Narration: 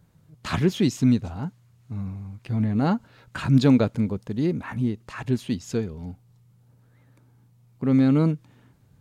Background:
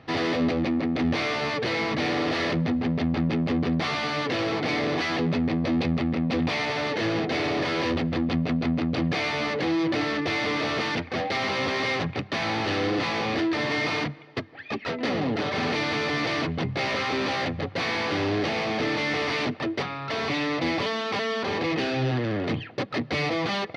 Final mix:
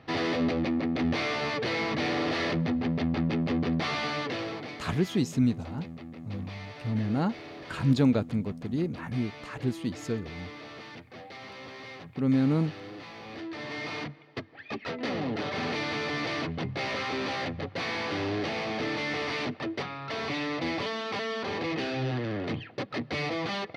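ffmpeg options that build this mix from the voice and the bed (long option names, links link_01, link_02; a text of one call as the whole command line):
ffmpeg -i stem1.wav -i stem2.wav -filter_complex "[0:a]adelay=4350,volume=-5.5dB[link_01];[1:a]volume=9.5dB,afade=type=out:start_time=4.06:duration=0.73:silence=0.188365,afade=type=in:start_time=13.21:duration=1.37:silence=0.237137[link_02];[link_01][link_02]amix=inputs=2:normalize=0" out.wav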